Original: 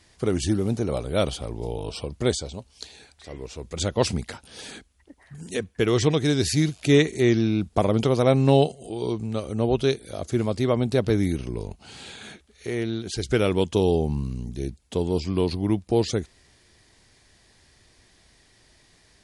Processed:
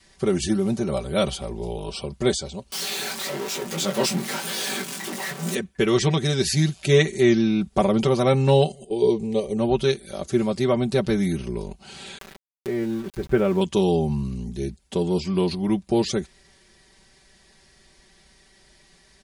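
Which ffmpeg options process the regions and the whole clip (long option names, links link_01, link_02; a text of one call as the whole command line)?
ffmpeg -i in.wav -filter_complex "[0:a]asettb=1/sr,asplit=3[link_01][link_02][link_03];[link_01]atrim=end=2.724[link_04];[link_02]atrim=start=2.72:end=5.55,asetpts=PTS-STARTPTS,afade=type=in:duration=0.004:curve=qsin,afade=type=out:start_time=2.826:duration=0.004:curve=qsin,aeval=exprs='val(0)+0.5*0.075*sgn(val(0))':channel_layout=same,highpass=frequency=160:width=0.5412,highpass=frequency=160:width=1.3066,flanger=delay=17:depth=5.9:speed=1.1[link_05];[link_03]atrim=start=5.546[link_06];[link_04][link_05]acrossfade=duration=0.004:curve1=hsin:curve2=qsin[link_07];[link_07][link_06]acrossfade=duration=0.004:curve1=qsin:curve2=hsin,asettb=1/sr,asplit=3[link_08][link_09][link_10];[link_08]atrim=end=8.844[link_11];[link_09]atrim=start=8.84:end=9.57,asetpts=PTS-STARTPTS,afade=type=in:duration=0.004:curve=qsin,afade=type=out:start_time=0.726:duration=0.004:curve=qsin,agate=range=-15dB:threshold=-36dB:ratio=16:release=100:detection=peak,asuperstop=centerf=1400:order=4:qfactor=1.7,equalizer=frequency=440:width=4.5:gain=12.5[link_12];[link_10]atrim=start=9.566[link_13];[link_11][link_12]acrossfade=duration=0.004:curve1=hsin:curve2=qsin[link_14];[link_14][link_13]acrossfade=duration=0.004:curve1=qsin:curve2=hsin,asettb=1/sr,asplit=3[link_15][link_16][link_17];[link_15]atrim=end=12.184[link_18];[link_16]atrim=start=12.18:end=13.61,asetpts=PTS-STARTPTS,afade=type=in:duration=0.004:curve=qsin,afade=type=out:start_time=1.426:duration=0.004:curve=qsin,lowpass=1500,aeval=exprs='val(0)*gte(abs(val(0)),0.0106)':channel_layout=same,acompressor=mode=upward:threshold=-35dB:ratio=2.5:attack=3.2:release=140:knee=2.83:detection=peak[link_19];[link_17]atrim=start=13.606[link_20];[link_18][link_19]acrossfade=duration=0.004:curve1=hsin:curve2=qsin[link_21];[link_21][link_20]acrossfade=duration=0.004:curve1=qsin:curve2=hsin,aecho=1:1:5.2:0.81,adynamicequalizer=threshold=0.0224:dfrequency=440:dqfactor=2.4:tfrequency=440:tqfactor=2.4:attack=5:release=100:ratio=0.375:range=2:mode=cutabove:tftype=bell" out.wav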